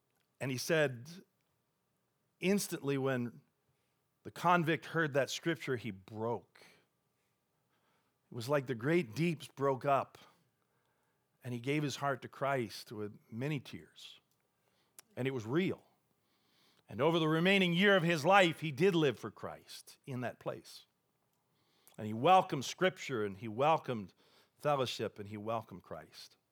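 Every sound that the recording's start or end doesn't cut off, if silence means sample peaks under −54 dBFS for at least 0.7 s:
0:02.41–0:03.39
0:04.25–0:06.72
0:08.32–0:10.27
0:11.44–0:14.17
0:14.99–0:15.80
0:16.77–0:20.81

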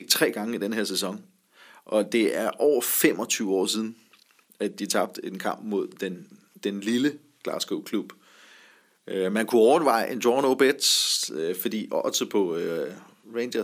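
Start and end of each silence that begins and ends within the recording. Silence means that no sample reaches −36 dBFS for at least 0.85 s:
0:08.10–0:09.08

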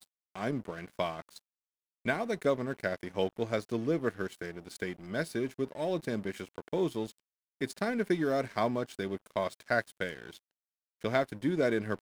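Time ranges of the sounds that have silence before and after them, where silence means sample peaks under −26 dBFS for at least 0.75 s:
0:02.07–0:10.08

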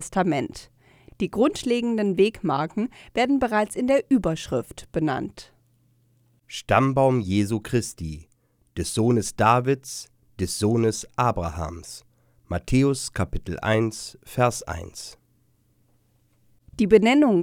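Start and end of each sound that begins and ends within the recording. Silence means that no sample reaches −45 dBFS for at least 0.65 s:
0:06.50–0:15.15

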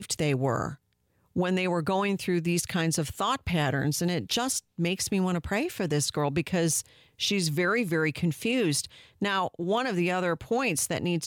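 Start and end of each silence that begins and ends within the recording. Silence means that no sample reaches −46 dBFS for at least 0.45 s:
0:00.75–0:01.36

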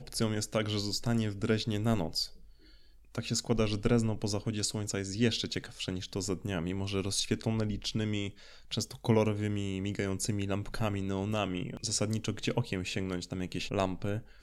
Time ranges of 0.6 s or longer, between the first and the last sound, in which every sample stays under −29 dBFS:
0:02.25–0:03.18

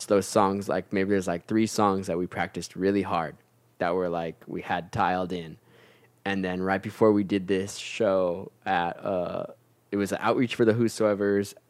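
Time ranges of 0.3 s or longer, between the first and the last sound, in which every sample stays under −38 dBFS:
0:03.31–0:03.80
0:05.54–0:06.26
0:09.51–0:09.93

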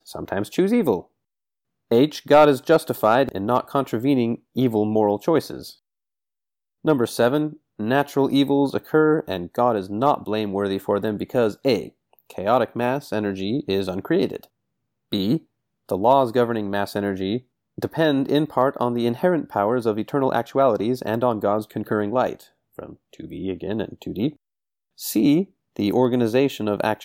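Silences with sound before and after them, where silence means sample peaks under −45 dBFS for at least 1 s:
0:05.74–0:06.84

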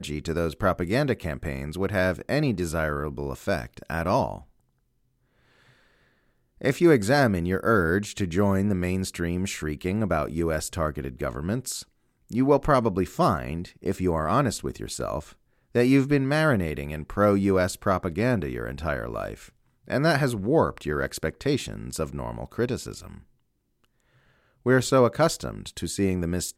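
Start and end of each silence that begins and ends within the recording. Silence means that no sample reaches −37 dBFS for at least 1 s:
0:04.38–0:06.61
0:23.18–0:24.66

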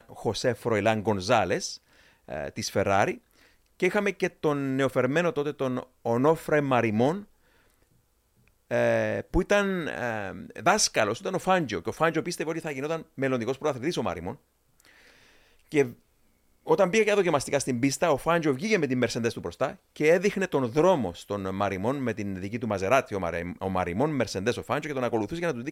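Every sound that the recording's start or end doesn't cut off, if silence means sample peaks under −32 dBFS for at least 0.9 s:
0:08.71–0:14.33

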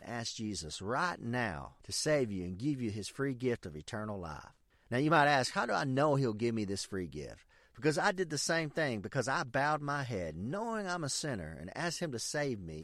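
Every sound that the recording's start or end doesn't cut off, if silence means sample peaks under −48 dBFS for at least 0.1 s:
0:01.84–0:04.50
0:04.91–0:07.34

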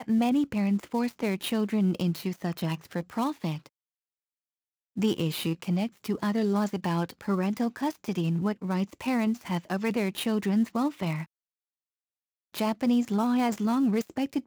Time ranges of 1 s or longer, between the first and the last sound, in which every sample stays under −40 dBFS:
0:03.67–0:04.97
0:11.24–0:12.54

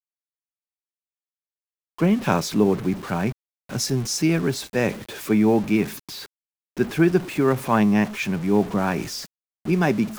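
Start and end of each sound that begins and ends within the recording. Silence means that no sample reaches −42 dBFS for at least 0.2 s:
0:01.98–0:03.32
0:03.69–0:06.26
0:06.77–0:09.27

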